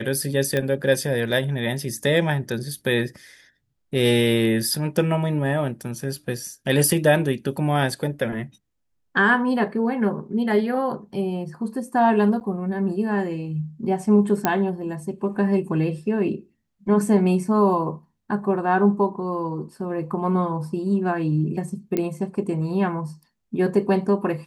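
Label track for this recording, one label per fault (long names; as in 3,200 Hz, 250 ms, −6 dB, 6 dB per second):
0.570000	0.570000	click −11 dBFS
12.400000	12.410000	drop-out 9.3 ms
14.450000	14.450000	click −5 dBFS
21.970000	21.970000	click −11 dBFS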